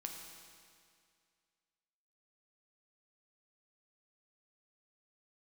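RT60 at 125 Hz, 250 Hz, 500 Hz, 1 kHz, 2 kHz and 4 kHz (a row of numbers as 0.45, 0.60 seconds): 2.2, 2.2, 2.2, 2.2, 2.2, 2.1 seconds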